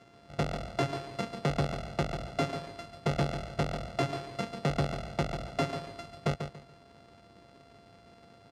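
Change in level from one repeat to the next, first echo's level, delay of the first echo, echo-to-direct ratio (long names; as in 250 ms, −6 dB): −11.5 dB, −8.0 dB, 142 ms, −7.5 dB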